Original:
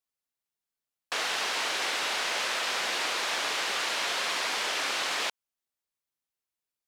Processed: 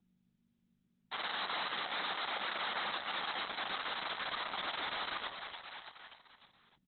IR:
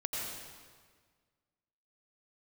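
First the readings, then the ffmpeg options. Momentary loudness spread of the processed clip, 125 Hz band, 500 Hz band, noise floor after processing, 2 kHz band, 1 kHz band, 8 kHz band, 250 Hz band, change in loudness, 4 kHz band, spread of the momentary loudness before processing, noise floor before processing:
11 LU, n/a, -9.5 dB, -77 dBFS, -9.0 dB, -5.5 dB, under -40 dB, -6.0 dB, -9.5 dB, -9.5 dB, 2 LU, under -85 dBFS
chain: -filter_complex "[0:a]alimiter=level_in=3.5dB:limit=-24dB:level=0:latency=1:release=34,volume=-3.5dB,aeval=exprs='val(0)*gte(abs(val(0)),0.00224)':c=same,aeval=exprs='val(0)+0.000398*(sin(2*PI*50*n/s)+sin(2*PI*2*50*n/s)/2+sin(2*PI*3*50*n/s)/3+sin(2*PI*4*50*n/s)/4+sin(2*PI*5*50*n/s)/5)':c=same,afreqshift=-18,asoftclip=type=tanh:threshold=-26.5dB,tiltshelf=f=1.1k:g=-5.5,aecho=1:1:294|588|882|1176|1470:0.355|0.145|0.0596|0.0245|0.01,acrossover=split=400[a][b];[b]acompressor=threshold=-51dB:ratio=2[c];[a][c]amix=inputs=2:normalize=0,highpass=f=160:w=0.5412,highpass=f=160:w=1.3066,equalizer=f=190:t=q:w=4:g=7,equalizer=f=390:t=q:w=4:g=-4,equalizer=f=810:t=q:w=4:g=8,equalizer=f=1.2k:t=q:w=4:g=6,equalizer=f=2.6k:t=q:w=4:g=-10,lowpass=f=5.1k:w=0.5412,lowpass=f=5.1k:w=1.3066,volume=7dB" -ar 48000 -c:a libopus -b:a 6k

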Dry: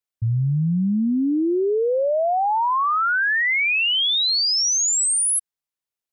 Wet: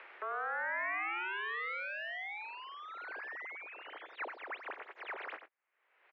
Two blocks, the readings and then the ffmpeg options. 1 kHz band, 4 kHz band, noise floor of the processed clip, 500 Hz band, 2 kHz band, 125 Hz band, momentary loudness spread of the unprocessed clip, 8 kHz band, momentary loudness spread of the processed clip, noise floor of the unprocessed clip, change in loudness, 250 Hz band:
-18.0 dB, -31.0 dB, -80 dBFS, -24.5 dB, -14.5 dB, under -40 dB, 4 LU, under -40 dB, 11 LU, under -85 dBFS, -20.5 dB, -39.0 dB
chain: -filter_complex "[0:a]acompressor=mode=upward:threshold=-25dB:ratio=2.5,alimiter=limit=-23.5dB:level=0:latency=1:release=473,acontrast=89,aeval=exprs='0.0224*(abs(mod(val(0)/0.0224+3,4)-2)-1)':c=same,crystalizer=i=8:c=0,asoftclip=type=tanh:threshold=-15dB,asplit=2[a][b];[b]adelay=93.29,volume=-10dB,highshelf=f=4k:g=-2.1[c];[a][c]amix=inputs=2:normalize=0,highpass=f=260:t=q:w=0.5412,highpass=f=260:t=q:w=1.307,lowpass=f=2.1k:t=q:w=0.5176,lowpass=f=2.1k:t=q:w=0.7071,lowpass=f=2.1k:t=q:w=1.932,afreqshift=96,volume=-3.5dB"

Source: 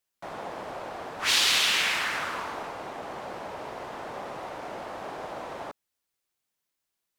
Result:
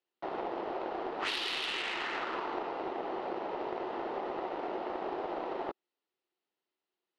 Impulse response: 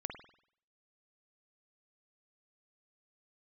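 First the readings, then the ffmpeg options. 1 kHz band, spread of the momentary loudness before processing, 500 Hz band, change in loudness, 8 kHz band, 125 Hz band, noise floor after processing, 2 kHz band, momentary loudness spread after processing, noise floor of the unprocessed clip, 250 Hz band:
-1.5 dB, 17 LU, +1.5 dB, -7.5 dB, under -20 dB, -9.0 dB, under -85 dBFS, -9.5 dB, 5 LU, -84 dBFS, +3.0 dB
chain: -af "highpass=300,equalizer=f=360:t=q:w=4:g=9,equalizer=f=590:t=q:w=4:g=-4,equalizer=f=1.1k:t=q:w=4:g=-5,equalizer=f=1.6k:t=q:w=4:g=-8,equalizer=f=2.3k:t=q:w=4:g=-8,equalizer=f=3.4k:t=q:w=4:g=-5,lowpass=f=3.5k:w=0.5412,lowpass=f=3.5k:w=1.3066,acompressor=threshold=-36dB:ratio=12,aeval=exprs='0.0447*(cos(1*acos(clip(val(0)/0.0447,-1,1)))-cos(1*PI/2))+0.001*(cos(2*acos(clip(val(0)/0.0447,-1,1)))-cos(2*PI/2))+0.00708*(cos(3*acos(clip(val(0)/0.0447,-1,1)))-cos(3*PI/2))':c=same,volume=8.5dB"

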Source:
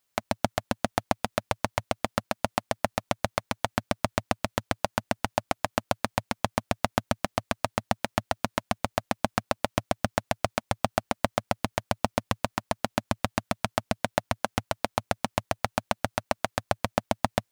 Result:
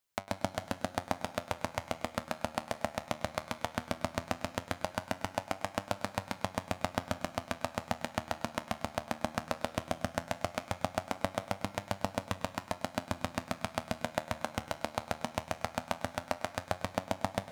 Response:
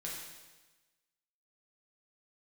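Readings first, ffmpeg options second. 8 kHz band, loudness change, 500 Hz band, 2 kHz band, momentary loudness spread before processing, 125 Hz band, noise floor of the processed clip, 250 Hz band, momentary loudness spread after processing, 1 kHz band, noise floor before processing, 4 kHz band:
-6.5 dB, -6.5 dB, -6.5 dB, -6.5 dB, 2 LU, -7.0 dB, -54 dBFS, -6.5 dB, 2 LU, -6.5 dB, -77 dBFS, -6.5 dB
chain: -filter_complex "[0:a]flanger=delay=10:depth=3.4:regen=73:speed=0.17:shape=triangular,asplit=2[a][b];[1:a]atrim=start_sample=2205,adelay=101[c];[b][c]afir=irnorm=-1:irlink=0,volume=-12dB[d];[a][d]amix=inputs=2:normalize=0,volume=-2.5dB"

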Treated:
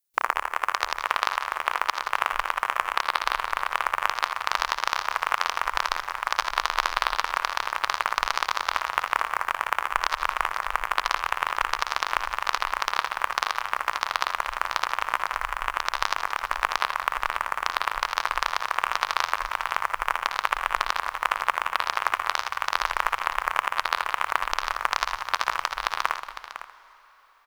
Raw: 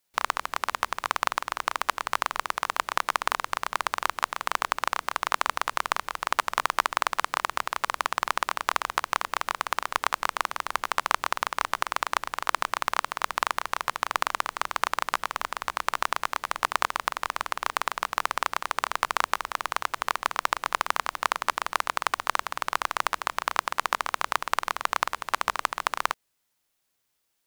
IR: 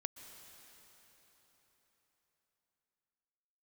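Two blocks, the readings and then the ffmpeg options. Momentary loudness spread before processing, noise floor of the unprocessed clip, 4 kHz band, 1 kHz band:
3 LU, -76 dBFS, +2.5 dB, +1.5 dB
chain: -filter_complex "[0:a]crystalizer=i=2:c=0,afwtdn=0.02,alimiter=limit=-3.5dB:level=0:latency=1:release=339,asubboost=boost=6.5:cutoff=130,aecho=1:1:58|70|179|505:0.188|0.133|0.224|0.251,asplit=2[a][b];[1:a]atrim=start_sample=2205,adelay=82[c];[b][c]afir=irnorm=-1:irlink=0,volume=-9dB[d];[a][d]amix=inputs=2:normalize=0,volume=2dB"

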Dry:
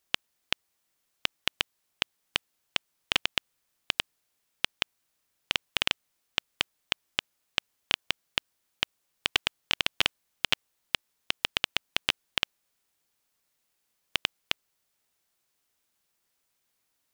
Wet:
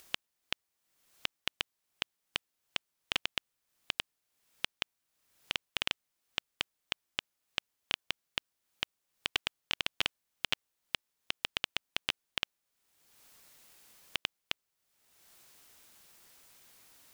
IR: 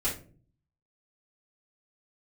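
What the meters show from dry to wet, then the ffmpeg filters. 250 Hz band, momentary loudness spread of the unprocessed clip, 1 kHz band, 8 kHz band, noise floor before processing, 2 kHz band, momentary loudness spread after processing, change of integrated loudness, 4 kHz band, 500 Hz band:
-6.5 dB, 6 LU, -6.5 dB, -6.5 dB, -78 dBFS, -6.5 dB, 22 LU, -6.5 dB, -6.5 dB, -6.5 dB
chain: -af "acompressor=mode=upward:threshold=-34dB:ratio=2.5,volume=-6.5dB"

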